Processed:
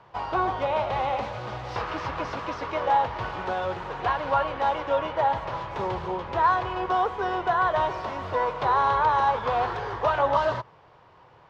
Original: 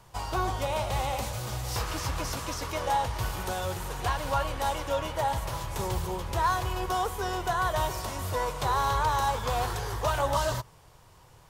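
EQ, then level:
high-pass filter 430 Hz 6 dB per octave
low-pass filter 2,100 Hz 6 dB per octave
high-frequency loss of the air 220 metres
+8.0 dB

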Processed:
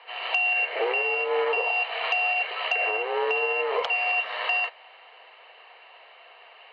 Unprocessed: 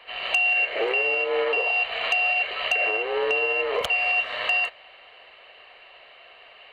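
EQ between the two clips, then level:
high-frequency loss of the air 180 metres
loudspeaker in its box 460–7,400 Hz, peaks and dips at 470 Hz +3 dB, 900 Hz +7 dB, 5,100 Hz +6 dB
notch filter 580 Hz, Q 13
0.0 dB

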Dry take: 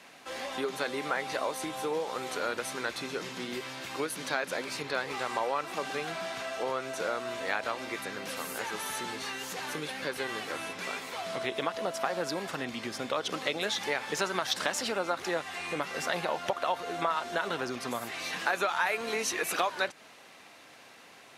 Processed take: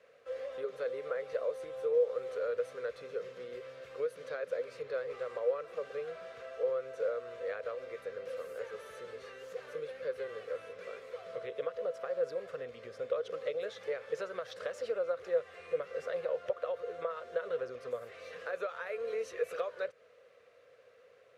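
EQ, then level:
drawn EQ curve 100 Hz 0 dB, 220 Hz −13 dB, 330 Hz −14 dB, 490 Hz +15 dB, 850 Hz −17 dB, 1,200 Hz −3 dB, 3,700 Hz −12 dB, 14,000 Hz −19 dB
−7.5 dB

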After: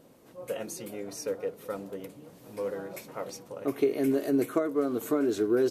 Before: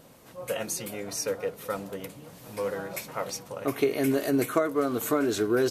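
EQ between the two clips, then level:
parametric band 340 Hz +9 dB 1.7 octaves
−8.5 dB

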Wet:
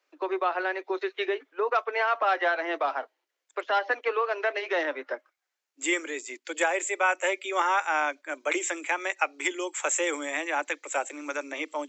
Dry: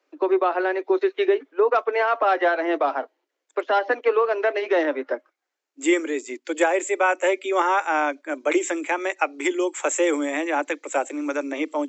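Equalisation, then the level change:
high-pass filter 1,200 Hz 6 dB per octave
0.0 dB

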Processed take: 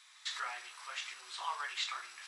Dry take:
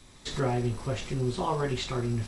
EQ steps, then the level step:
high-pass filter 1,200 Hz 24 dB per octave
high-shelf EQ 6,200 Hz −8.5 dB
+1.0 dB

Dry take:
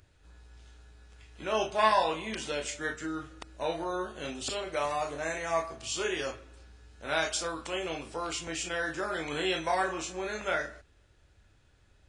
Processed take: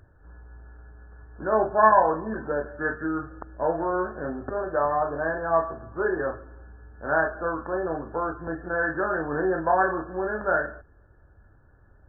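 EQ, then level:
linear-phase brick-wall low-pass 1,800 Hz
+7.5 dB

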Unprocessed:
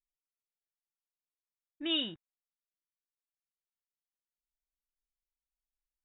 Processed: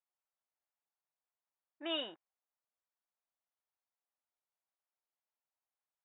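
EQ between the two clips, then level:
four-pole ladder band-pass 900 Hz, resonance 30%
+16.0 dB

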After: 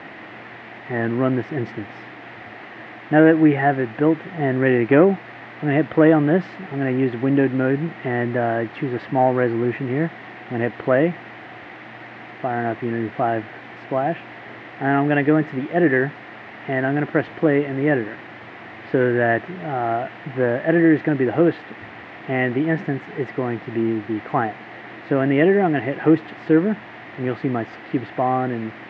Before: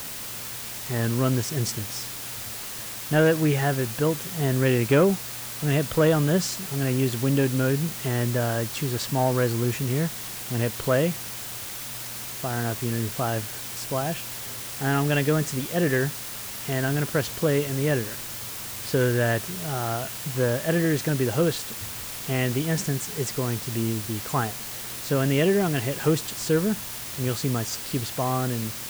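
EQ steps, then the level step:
loudspeaker in its box 180–2,500 Hz, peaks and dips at 320 Hz +9 dB, 730 Hz +9 dB, 1,900 Hz +9 dB
low-shelf EQ 350 Hz +4 dB
+1.0 dB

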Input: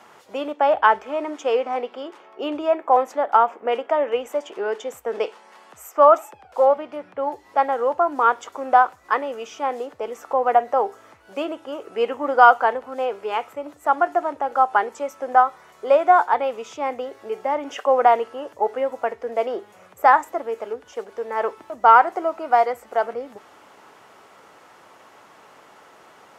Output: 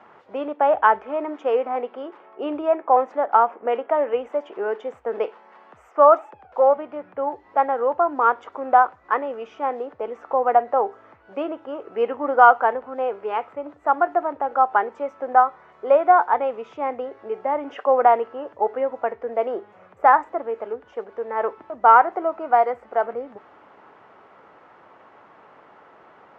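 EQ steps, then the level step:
low-pass filter 1,900 Hz 12 dB per octave
0.0 dB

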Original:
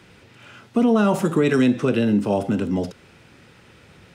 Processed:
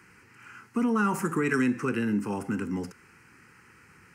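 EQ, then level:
low-shelf EQ 250 Hz −11.5 dB
phaser with its sweep stopped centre 1,500 Hz, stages 4
0.0 dB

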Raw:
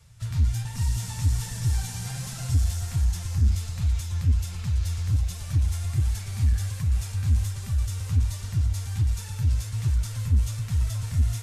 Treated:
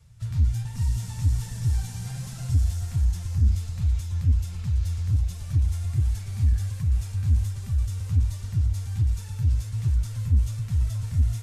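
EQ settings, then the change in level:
low-shelf EQ 400 Hz +7 dB
−6.0 dB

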